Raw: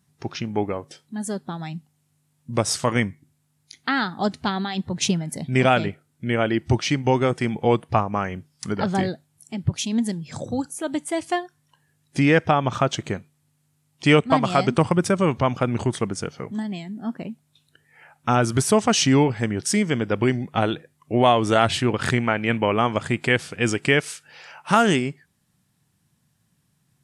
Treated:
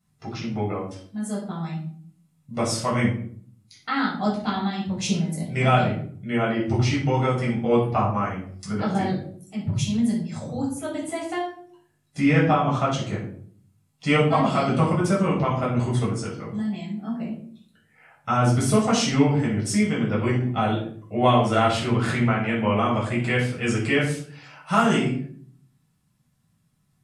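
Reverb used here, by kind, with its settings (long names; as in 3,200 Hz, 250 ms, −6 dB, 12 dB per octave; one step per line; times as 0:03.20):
rectangular room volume 620 cubic metres, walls furnished, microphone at 6.8 metres
level −11.5 dB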